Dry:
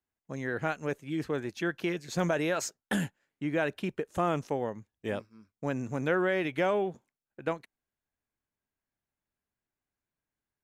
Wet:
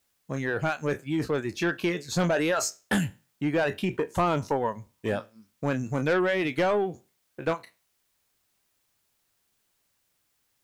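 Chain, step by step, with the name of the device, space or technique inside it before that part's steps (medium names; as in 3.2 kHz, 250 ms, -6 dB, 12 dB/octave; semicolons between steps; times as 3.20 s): spectral sustain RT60 0.32 s; reverb removal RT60 0.66 s; open-reel tape (saturation -23.5 dBFS, distortion -15 dB; peaking EQ 110 Hz +3.5 dB; white noise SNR 44 dB); 3.94–5.07 s: peaking EQ 960 Hz +12 dB 0.23 oct; trim +6 dB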